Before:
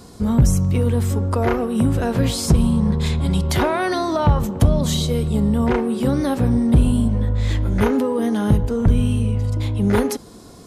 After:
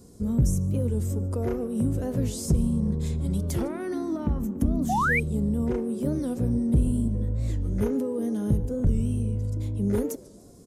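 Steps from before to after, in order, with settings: high-order bell 1.8 kHz -11.5 dB 3 oct; frequency-shifting echo 146 ms, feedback 40%, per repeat +96 Hz, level -23 dB; 4.90–5.20 s: painted sound rise 720–2500 Hz -16 dBFS; 3.68–5.07 s: graphic EQ 125/250/500/2000/4000/8000 Hz -12/+11/-8/+3/-6/-5 dB; warped record 45 rpm, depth 160 cents; trim -7.5 dB

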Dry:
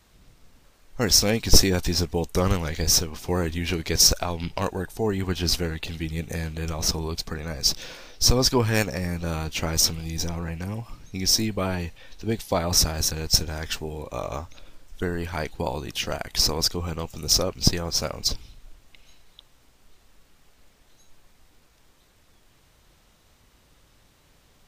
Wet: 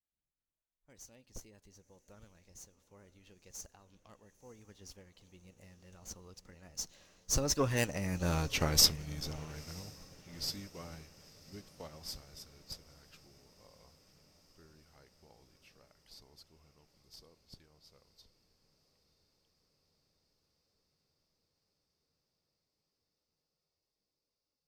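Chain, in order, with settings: single-diode clipper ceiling -10 dBFS; Doppler pass-by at 8.42 s, 39 m/s, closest 20 m; echo that smears into a reverb 976 ms, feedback 72%, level -16 dB; spectral noise reduction 6 dB; on a send at -21 dB: reverberation RT60 1.2 s, pre-delay 3 ms; on the sum: upward expansion 1.5:1, over -46 dBFS

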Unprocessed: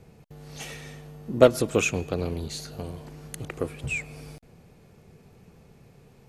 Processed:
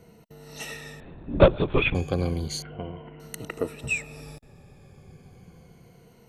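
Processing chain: drifting ripple filter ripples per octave 1.9, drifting -0.32 Hz, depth 12 dB; 1.00–1.95 s: LPC vocoder at 8 kHz whisper; 2.62–3.20 s: Chebyshev low-pass 3.1 kHz, order 6

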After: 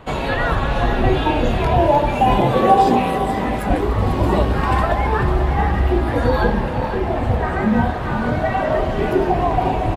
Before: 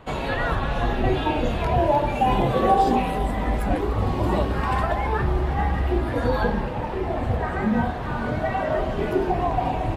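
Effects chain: 2.38–3.70 s: high-pass 90 Hz 12 dB/octave; delay 496 ms -10.5 dB; trim +5 dB

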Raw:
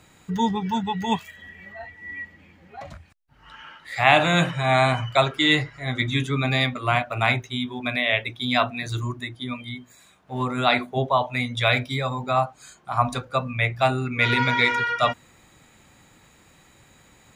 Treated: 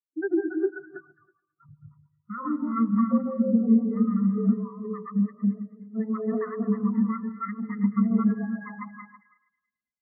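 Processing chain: backward echo that repeats 281 ms, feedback 50%, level -0.5 dB; spectral noise reduction 8 dB; bass shelf 260 Hz +10 dB; de-hum 49.15 Hz, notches 7; compression 3:1, threshold -22 dBFS, peak gain reduction 10.5 dB; two-band feedback delay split 700 Hz, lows 245 ms, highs 373 ms, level -6.5 dB; on a send at -19.5 dB: reverberation RT60 0.95 s, pre-delay 98 ms; on the sum: speed mistake 45 rpm record played at 78 rpm; brick-wall FIR low-pass 2.1 kHz; spectral contrast expander 2.5:1

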